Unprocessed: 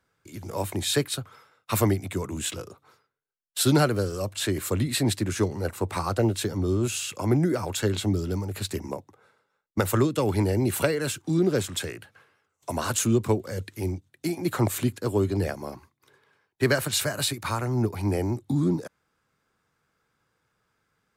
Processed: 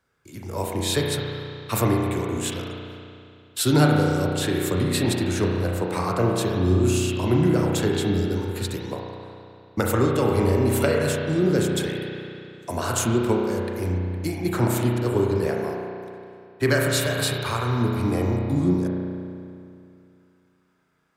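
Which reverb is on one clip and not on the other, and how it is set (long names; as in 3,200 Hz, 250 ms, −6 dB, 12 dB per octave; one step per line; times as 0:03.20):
spring reverb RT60 2.5 s, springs 33 ms, chirp 65 ms, DRR −1 dB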